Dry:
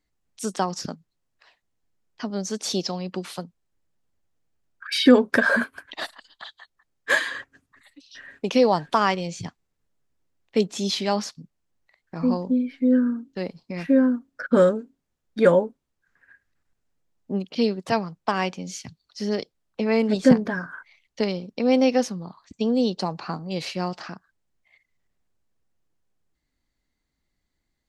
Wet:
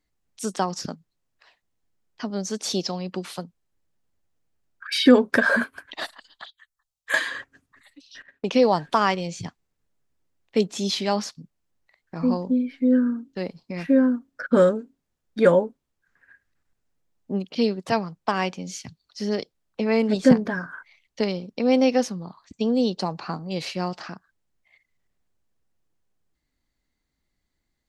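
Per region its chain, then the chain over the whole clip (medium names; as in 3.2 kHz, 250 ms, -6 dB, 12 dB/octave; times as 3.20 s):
6.45–7.14 s: amplifier tone stack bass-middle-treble 10-0-10 + touch-sensitive phaser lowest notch 260 Hz, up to 5 kHz, full sweep at -38 dBFS
8.22–8.63 s: Bessel low-pass 6.4 kHz + gate -43 dBFS, range -16 dB
whole clip: none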